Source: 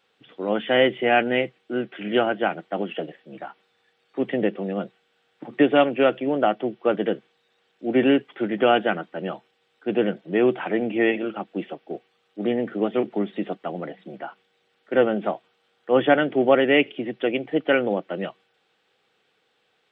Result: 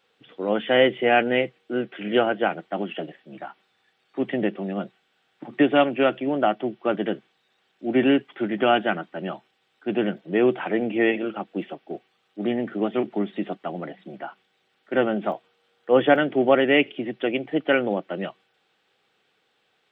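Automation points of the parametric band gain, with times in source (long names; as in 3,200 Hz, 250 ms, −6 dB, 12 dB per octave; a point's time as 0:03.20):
parametric band 480 Hz 0.2 octaves
+2 dB
from 0:02.66 −9 dB
from 0:10.18 −1 dB
from 0:11.62 −7.5 dB
from 0:15.32 +2.5 dB
from 0:16.16 −4 dB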